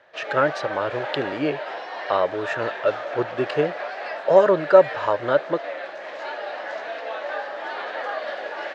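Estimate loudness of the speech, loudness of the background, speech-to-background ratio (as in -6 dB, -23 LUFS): -22.5 LUFS, -31.0 LUFS, 8.5 dB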